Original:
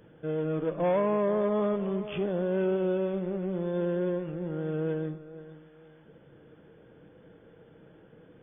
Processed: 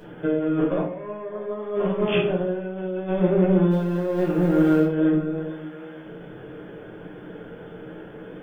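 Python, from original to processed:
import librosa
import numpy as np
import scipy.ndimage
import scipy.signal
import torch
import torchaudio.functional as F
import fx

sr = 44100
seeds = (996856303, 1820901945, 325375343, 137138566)

y = fx.law_mismatch(x, sr, coded='A', at=(3.7, 4.84), fade=0.02)
y = fx.low_shelf(y, sr, hz=200.0, db=-8.0)
y = fx.over_compress(y, sr, threshold_db=-35.0, ratio=-0.5)
y = fx.room_shoebox(y, sr, seeds[0], volume_m3=50.0, walls='mixed', distance_m=1.0)
y = F.gain(torch.from_numpy(y), 6.0).numpy()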